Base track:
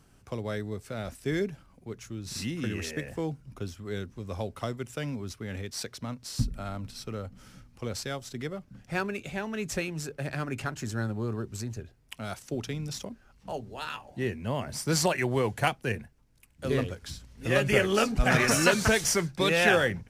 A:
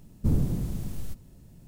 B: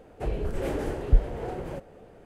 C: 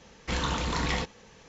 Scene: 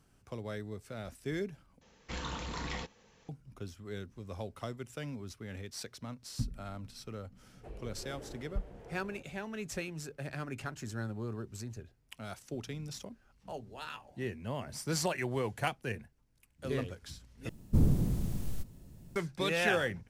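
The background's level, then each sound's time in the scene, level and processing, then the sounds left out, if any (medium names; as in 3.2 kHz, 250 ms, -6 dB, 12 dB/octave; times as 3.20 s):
base track -7 dB
1.81 s: replace with C -10 dB
7.43 s: add B -17.5 dB
17.49 s: replace with A -1.5 dB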